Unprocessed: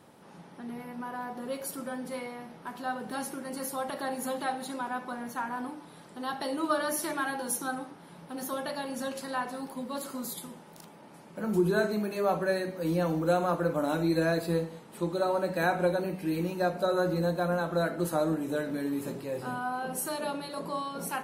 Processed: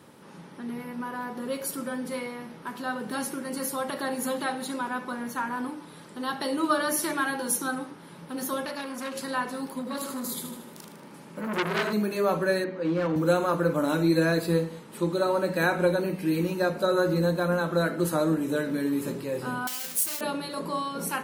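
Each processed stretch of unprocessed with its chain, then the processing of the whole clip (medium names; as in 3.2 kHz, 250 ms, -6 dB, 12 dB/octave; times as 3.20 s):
8.65–9.14 s: Chebyshev high-pass 240 Hz + transformer saturation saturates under 1.7 kHz
9.79–11.93 s: feedback delay 77 ms, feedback 52%, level -7.5 dB + transformer saturation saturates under 2.5 kHz
12.64–13.16 s: band-pass 190–2900 Hz + hard clipper -25.5 dBFS
19.67–20.21 s: square wave that keeps the level + pre-emphasis filter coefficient 0.9
whole clip: high-pass 61 Hz; peaking EQ 720 Hz -8 dB 0.43 oct; hum notches 60/120/180 Hz; trim +5 dB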